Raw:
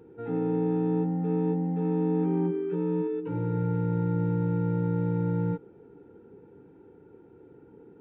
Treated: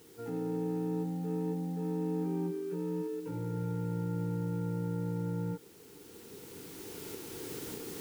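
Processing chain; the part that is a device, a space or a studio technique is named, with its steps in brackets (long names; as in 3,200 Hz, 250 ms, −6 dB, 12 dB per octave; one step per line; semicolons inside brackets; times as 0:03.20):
cheap recorder with automatic gain (white noise bed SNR 26 dB; camcorder AGC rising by 9.7 dB per second)
level −7.5 dB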